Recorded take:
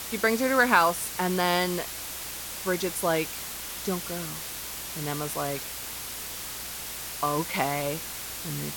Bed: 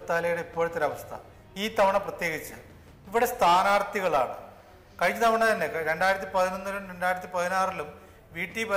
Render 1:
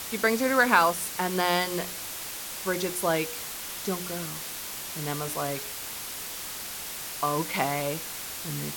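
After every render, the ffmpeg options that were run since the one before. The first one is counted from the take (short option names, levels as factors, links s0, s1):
-af "bandreject=f=60:t=h:w=4,bandreject=f=120:t=h:w=4,bandreject=f=180:t=h:w=4,bandreject=f=240:t=h:w=4,bandreject=f=300:t=h:w=4,bandreject=f=360:t=h:w=4,bandreject=f=420:t=h:w=4,bandreject=f=480:t=h:w=4,bandreject=f=540:t=h:w=4,bandreject=f=600:t=h:w=4"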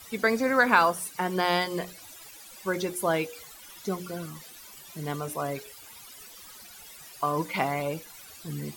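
-af "afftdn=nr=16:nf=-37"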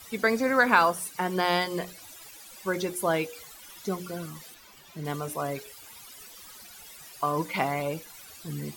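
-filter_complex "[0:a]asettb=1/sr,asplit=3[s0][s1][s2];[s0]atrim=end=4.544[s3];[s1]atrim=start=4.54:end=5.05,asetpts=PTS-STARTPTS,afade=t=in:d=0.004:c=qsin,afade=t=out:st=0.506:d=0.004:c=qsin,equalizer=f=11000:w=0.53:g=-10.5[s4];[s2]atrim=start=5.046[s5];[s3][s4]acrossfade=d=0.004:c1=hsin:c2=qsin[s6];[s6][s5]acrossfade=d=0.004:c1=qsin:c2=hsin"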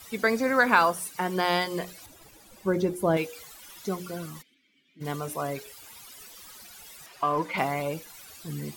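-filter_complex "[0:a]asettb=1/sr,asplit=3[s0][s1][s2];[s0]atrim=end=2.064[s3];[s1]atrim=start=2.06:end=3.17,asetpts=PTS-STARTPTS,afade=t=in:d=0.004:c=qsin,afade=t=out:st=1.106:d=0.004:c=qsin,tiltshelf=f=780:g=8[s4];[s2]atrim=start=3.166[s5];[s3][s4]acrossfade=d=0.004:c1=hsin:c2=qsin[s6];[s6][s5]acrossfade=d=0.004:c1=qsin:c2=hsin,asplit=3[s7][s8][s9];[s7]afade=t=out:st=4.41:d=0.02[s10];[s8]asplit=3[s11][s12][s13];[s11]bandpass=f=270:t=q:w=8,volume=1[s14];[s12]bandpass=f=2290:t=q:w=8,volume=0.501[s15];[s13]bandpass=f=3010:t=q:w=8,volume=0.355[s16];[s14][s15][s16]amix=inputs=3:normalize=0,afade=t=in:st=4.41:d=0.02,afade=t=out:st=5:d=0.02[s17];[s9]afade=t=in:st=5:d=0.02[s18];[s10][s17][s18]amix=inputs=3:normalize=0,asettb=1/sr,asplit=3[s19][s20][s21];[s19]atrim=end=7.064[s22];[s20]atrim=start=7.06:end=7.58,asetpts=PTS-STARTPTS,afade=t=in:d=0.004:c=qsin,afade=t=out:st=0.516:d=0.004:c=qsin,asplit=2[s23][s24];[s24]highpass=f=720:p=1,volume=3.98,asoftclip=type=tanh:threshold=0.211[s25];[s23][s25]amix=inputs=2:normalize=0,lowpass=f=1400:p=1,volume=0.501[s26];[s21]atrim=start=7.576[s27];[s22][s26]acrossfade=d=0.004:c1=hsin:c2=qsin[s28];[s28][s27]acrossfade=d=0.004:c1=qsin:c2=hsin"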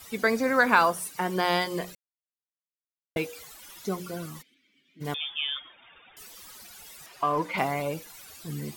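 -filter_complex "[0:a]asettb=1/sr,asplit=3[s0][s1][s2];[s0]atrim=end=5.144[s3];[s1]atrim=start=5.14:end=6.17,asetpts=PTS-STARTPTS,afade=t=in:d=0.004:c=qsin,afade=t=out:st=1.026:d=0.004:c=qsin,lowpass=f=3100:t=q:w=0.5098,lowpass=f=3100:t=q:w=0.6013,lowpass=f=3100:t=q:w=0.9,lowpass=f=3100:t=q:w=2.563,afreqshift=-3700[s4];[s2]atrim=start=6.166[s5];[s3][s4]acrossfade=d=0.004:c1=hsin:c2=qsin[s6];[s6][s5]acrossfade=d=0.004:c1=qsin:c2=hsin,asplit=3[s7][s8][s9];[s7]atrim=end=1.95,asetpts=PTS-STARTPTS,afade=t=out:st=1.946:d=0.004:c=hsin[s10];[s8]atrim=start=1.95:end=3.16,asetpts=PTS-STARTPTS,volume=0[s11];[s9]atrim=start=3.16,asetpts=PTS-STARTPTS,afade=t=in:d=0.004:c=hsin[s12];[s10][s11][s12]concat=n=3:v=0:a=1"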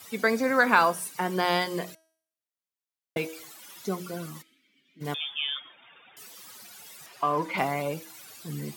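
-af "highpass=f=110:w=0.5412,highpass=f=110:w=1.3066,bandreject=f=321.9:t=h:w=4,bandreject=f=643.8:t=h:w=4,bandreject=f=965.7:t=h:w=4,bandreject=f=1287.6:t=h:w=4,bandreject=f=1609.5:t=h:w=4,bandreject=f=1931.4:t=h:w=4,bandreject=f=2253.3:t=h:w=4,bandreject=f=2575.2:t=h:w=4,bandreject=f=2897.1:t=h:w=4,bandreject=f=3219:t=h:w=4,bandreject=f=3540.9:t=h:w=4,bandreject=f=3862.8:t=h:w=4,bandreject=f=4184.7:t=h:w=4,bandreject=f=4506.6:t=h:w=4,bandreject=f=4828.5:t=h:w=4,bandreject=f=5150.4:t=h:w=4,bandreject=f=5472.3:t=h:w=4,bandreject=f=5794.2:t=h:w=4,bandreject=f=6116.1:t=h:w=4,bandreject=f=6438:t=h:w=4,bandreject=f=6759.9:t=h:w=4,bandreject=f=7081.8:t=h:w=4,bandreject=f=7403.7:t=h:w=4,bandreject=f=7725.6:t=h:w=4,bandreject=f=8047.5:t=h:w=4,bandreject=f=8369.4:t=h:w=4,bandreject=f=8691.3:t=h:w=4,bandreject=f=9013.2:t=h:w=4,bandreject=f=9335.1:t=h:w=4,bandreject=f=9657:t=h:w=4,bandreject=f=9978.9:t=h:w=4,bandreject=f=10300.8:t=h:w=4,bandreject=f=10622.7:t=h:w=4,bandreject=f=10944.6:t=h:w=4,bandreject=f=11266.5:t=h:w=4,bandreject=f=11588.4:t=h:w=4,bandreject=f=11910.3:t=h:w=4"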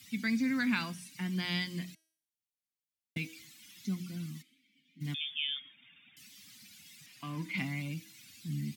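-filter_complex "[0:a]acrossover=split=6500[s0][s1];[s1]acompressor=threshold=0.002:ratio=4:attack=1:release=60[s2];[s0][s2]amix=inputs=2:normalize=0,firequalizer=gain_entry='entry(260,0);entry(420,-27);entry(1300,-19);entry(2100,-4)':delay=0.05:min_phase=1"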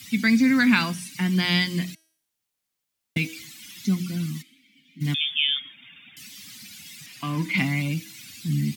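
-af "volume=3.98"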